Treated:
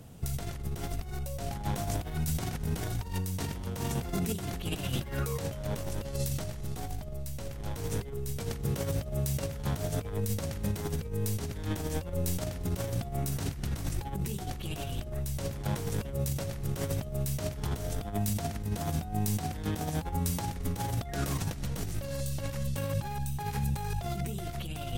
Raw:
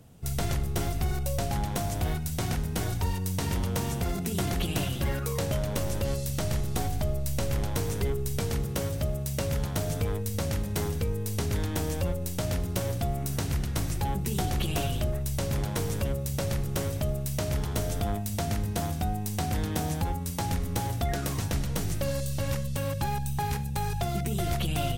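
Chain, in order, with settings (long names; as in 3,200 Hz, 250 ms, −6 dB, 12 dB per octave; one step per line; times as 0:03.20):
compressor whose output falls as the input rises −32 dBFS, ratio −0.5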